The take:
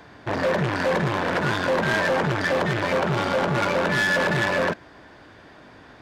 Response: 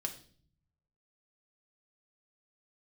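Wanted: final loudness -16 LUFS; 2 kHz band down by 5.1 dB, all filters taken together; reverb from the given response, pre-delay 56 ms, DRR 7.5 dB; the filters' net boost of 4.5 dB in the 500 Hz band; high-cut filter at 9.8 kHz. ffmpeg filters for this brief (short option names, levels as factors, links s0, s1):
-filter_complex "[0:a]lowpass=9800,equalizer=f=500:t=o:g=5.5,equalizer=f=2000:t=o:g=-7,asplit=2[s0][s1];[1:a]atrim=start_sample=2205,adelay=56[s2];[s1][s2]afir=irnorm=-1:irlink=0,volume=0.422[s3];[s0][s3]amix=inputs=2:normalize=0,volume=1.68"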